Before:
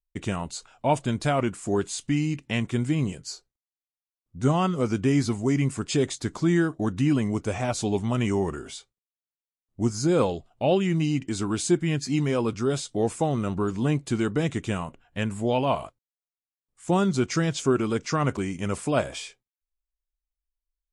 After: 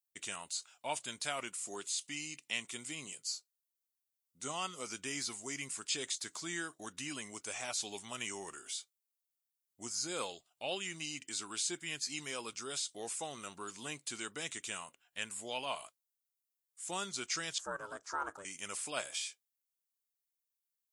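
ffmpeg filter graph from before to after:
ffmpeg -i in.wav -filter_complex "[0:a]asettb=1/sr,asplit=3[link_01][link_02][link_03];[link_01]atrim=end=1.494[link_04];[link_02]atrim=start=1.49:end=4.87,asetpts=PTS-STARTPTS,afade=type=in:duration=0.004:curve=qsin,afade=type=out:start_time=3.376:duration=0.004:curve=qsin,highpass=110,equalizer=frequency=1600:width=7.8:gain=-8[link_05];[link_03]atrim=start=4.866[link_06];[link_04][link_05]acrossfade=duration=0.004:curve1=hsin:curve2=qsin[link_07];[link_07][link_06]acrossfade=duration=0.004:curve1=qsin:curve2=hsin,asettb=1/sr,asplit=3[link_08][link_09][link_10];[link_08]atrim=end=17.584[link_11];[link_09]atrim=start=17.58:end=18.45,asetpts=PTS-STARTPTS,afade=type=in:duration=0.004:curve=qsin,afade=type=out:start_time=0.866:duration=0.004:curve=qsin,highshelf=frequency=1700:width_type=q:width=3:gain=-11,aeval=exprs='val(0)*sin(2*PI*200*n/s)':channel_layout=same[link_12];[link_10]atrim=start=18.446[link_13];[link_11][link_12]acrossfade=duration=0.004:curve1=hsin:curve2=qsin[link_14];[link_14][link_13]acrossfade=duration=0.004:curve1=qsin:curve2=hsin,acrossover=split=5100[link_15][link_16];[link_16]acompressor=threshold=-43dB:ratio=4:attack=1:release=60[link_17];[link_15][link_17]amix=inputs=2:normalize=0,aderivative,volume=4dB" out.wav

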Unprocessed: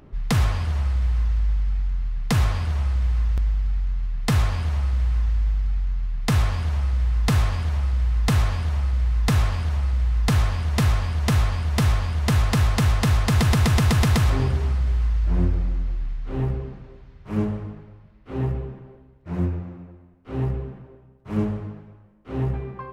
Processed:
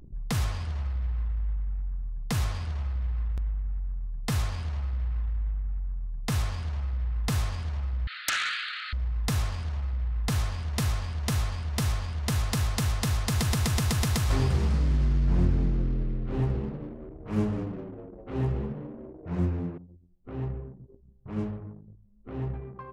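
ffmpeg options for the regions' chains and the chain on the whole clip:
ffmpeg -i in.wav -filter_complex "[0:a]asettb=1/sr,asplit=3[link_01][link_02][link_03];[link_01]atrim=end=8.074[link_04];[link_02]atrim=start=8.07:end=8.93,asetpts=PTS-STARTPTS,afade=type=in:duration=0.004:curve=qsin,afade=type=out:start_time=0.856:duration=0.004:curve=qsin,acrossover=split=3400[link_05][link_06];[link_06]acompressor=threshold=-45dB:ratio=4:attack=1:release=60[link_07];[link_05][link_07]amix=inputs=2:normalize=0,asuperpass=centerf=2400:order=20:qfactor=0.76,aeval=exprs='0.158*sin(PI/2*4.47*val(0)/0.158)':channel_layout=same[link_08];[link_03]atrim=start=8.926[link_09];[link_04][link_08]acrossfade=duration=0.004:curve1=hsin:curve2=qsin[link_10];[link_10][link_09]acrossfade=duration=0.004:curve1=qsin:curve2=hsin,asettb=1/sr,asplit=3[link_11][link_12][link_13];[link_11]atrim=end=14.304[link_14];[link_12]atrim=start=14.3:end=19.78,asetpts=PTS-STARTPTS,afade=type=in:duration=0.004:curve=qsin,afade=type=out:start_time=5.476:duration=0.004:curve=qsin,acontrast=30,asplit=6[link_15][link_16][link_17][link_18][link_19][link_20];[link_16]adelay=202,afreqshift=84,volume=-10dB[link_21];[link_17]adelay=404,afreqshift=168,volume=-16.4dB[link_22];[link_18]adelay=606,afreqshift=252,volume=-22.8dB[link_23];[link_19]adelay=808,afreqshift=336,volume=-29.1dB[link_24];[link_20]adelay=1010,afreqshift=420,volume=-35.5dB[link_25];[link_15][link_21][link_22][link_23][link_24][link_25]amix=inputs=6:normalize=0,atrim=end_sample=241668[link_26];[link_13]atrim=start=19.776[link_27];[link_14][link_26]acrossfade=duration=0.004:curve1=hsin:curve2=qsin[link_28];[link_28][link_27]acrossfade=duration=0.004:curve1=qsin:curve2=hsin,anlmdn=0.631,acompressor=mode=upward:threshold=-28dB:ratio=2.5,adynamicequalizer=threshold=0.00501:dfrequency=3800:dqfactor=0.7:tfrequency=3800:tqfactor=0.7:attack=5:release=100:ratio=0.375:range=4:mode=boostabove:tftype=highshelf,volume=-8dB" out.wav

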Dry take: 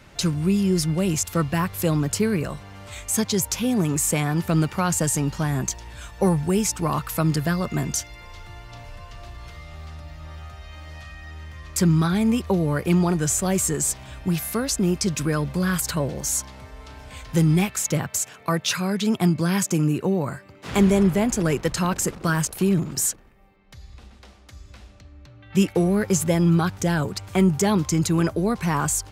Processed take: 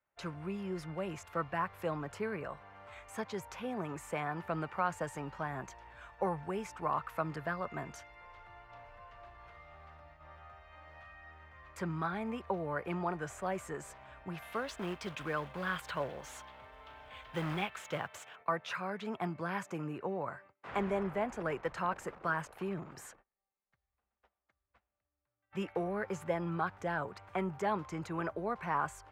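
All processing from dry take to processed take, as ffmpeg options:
ffmpeg -i in.wav -filter_complex "[0:a]asettb=1/sr,asplit=3[link_01][link_02][link_03];[link_01]atrim=end=14.424[link_04];[link_02]atrim=start=14.42:end=18.36,asetpts=PTS-STARTPTS,afade=type=in:duration=0.004:curve=qsin,afade=type=out:start_time=3.936:duration=0.004:curve=qsin,equalizer=frequency=3300:width=2.1:gain=11.5,acrusher=bits=3:mode=log:mix=0:aa=0.000001[link_05];[link_03]atrim=start=18.356[link_06];[link_04][link_05]acrossfade=duration=0.004:curve1=hsin:curve2=qsin[link_07];[link_07][link_06]acrossfade=duration=0.004:curve1=qsin:curve2=hsin,acrossover=split=550 2600:gain=0.141 1 0.158[link_08][link_09][link_10];[link_08][link_09][link_10]amix=inputs=3:normalize=0,agate=range=-26dB:threshold=-50dB:ratio=16:detection=peak,highshelf=frequency=2500:gain=-11,volume=-4dB" out.wav

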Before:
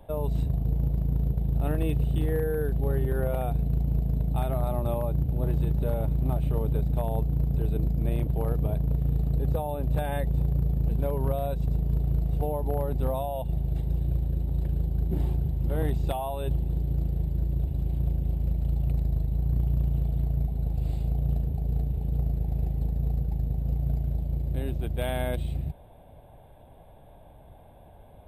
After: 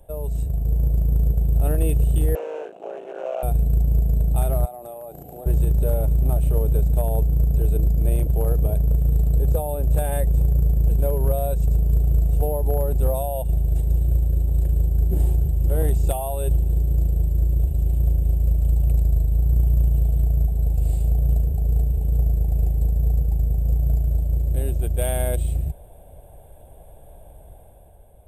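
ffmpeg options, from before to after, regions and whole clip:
ffmpeg -i in.wav -filter_complex "[0:a]asettb=1/sr,asplit=3[link_01][link_02][link_03];[link_01]atrim=end=2.354[link_04];[link_02]atrim=start=2.35:end=3.43,asetpts=PTS-STARTPTS,afade=type=in:duration=0.004:curve=qsin,afade=type=out:start_time=1.076:duration=0.004:curve=qsin,acrossover=split=3100[link_05][link_06];[link_06]acompressor=threshold=-60dB:ratio=4:attack=1:release=60[link_07];[link_05][link_07]amix=inputs=2:normalize=0,aeval=exprs='clip(val(0),-1,0.0112)':channel_layout=same,highpass=frequency=370:width=0.5412,highpass=frequency=370:width=1.3066,equalizer=frequency=430:width_type=q:width=4:gain=-6,equalizer=frequency=660:width_type=q:width=4:gain=7,equalizer=frequency=1900:width_type=q:width=4:gain=-7,equalizer=frequency=2700:width_type=q:width=4:gain=10,equalizer=frequency=4900:width_type=q:width=4:gain=-10,lowpass=frequency=6000:width=0.5412,lowpass=frequency=6000:width=1.3066[link_08];[link_03]atrim=start=3.426[link_09];[link_04][link_08]acrossfade=duration=0.004:curve1=hsin:curve2=qsin[link_10];[link_10][link_09]acrossfade=duration=0.004:curve1=qsin:curve2=hsin,asettb=1/sr,asplit=3[link_11][link_12][link_13];[link_11]atrim=end=4.654[link_14];[link_12]atrim=start=4.65:end=5.46,asetpts=PTS-STARTPTS,afade=type=in:duration=0.004:curve=qsin,afade=type=out:start_time=0.806:duration=0.004:curve=qsin,highpass=310,equalizer=frequency=740:width_type=o:width=0.21:gain=13,acompressor=threshold=-36dB:ratio=10:attack=3.2:release=140:knee=1:detection=peak[link_15];[link_13]atrim=start=5.456[link_16];[link_14][link_15]acrossfade=duration=0.004:curve1=hsin:curve2=qsin[link_17];[link_17][link_16]acrossfade=duration=0.004:curve1=qsin:curve2=hsin,equalizer=frequency=125:width_type=o:width=1:gain=-7,equalizer=frequency=250:width_type=o:width=1:gain=-10,equalizer=frequency=1000:width_type=o:width=1:gain=-10,equalizer=frequency=2000:width_type=o:width=1:gain=-7,equalizer=frequency=4000:width_type=o:width=1:gain=-11,equalizer=frequency=8000:width_type=o:width=1:gain=10,dynaudnorm=framelen=100:gausssize=13:maxgain=6dB,volume=4dB" out.wav

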